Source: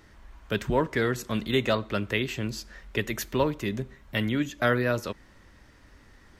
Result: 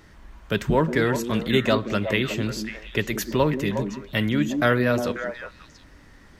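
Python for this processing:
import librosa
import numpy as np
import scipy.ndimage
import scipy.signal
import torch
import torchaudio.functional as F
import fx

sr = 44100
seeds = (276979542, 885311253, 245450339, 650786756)

y = fx.peak_eq(x, sr, hz=160.0, db=6.5, octaves=0.25)
y = fx.echo_stepped(y, sr, ms=180, hz=260.0, octaves=1.4, feedback_pct=70, wet_db=-3.0)
y = y * librosa.db_to_amplitude(3.5)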